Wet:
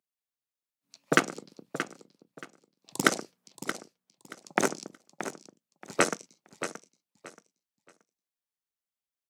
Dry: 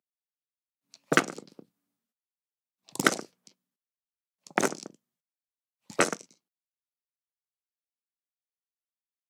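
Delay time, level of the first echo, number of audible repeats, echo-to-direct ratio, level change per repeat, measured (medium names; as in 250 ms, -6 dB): 627 ms, -10.5 dB, 2, -10.0 dB, -12.5 dB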